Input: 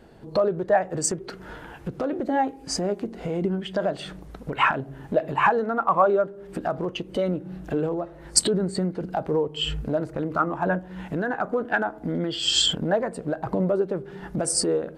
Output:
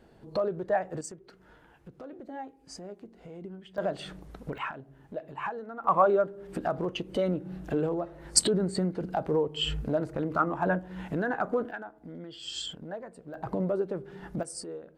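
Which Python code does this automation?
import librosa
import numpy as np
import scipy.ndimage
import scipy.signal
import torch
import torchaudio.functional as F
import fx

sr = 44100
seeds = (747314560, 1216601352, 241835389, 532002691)

y = fx.gain(x, sr, db=fx.steps((0.0, -7.0), (1.01, -17.0), (3.78, -5.0), (4.58, -15.0), (5.84, -3.0), (11.71, -16.0), (13.34, -6.0), (14.43, -16.5)))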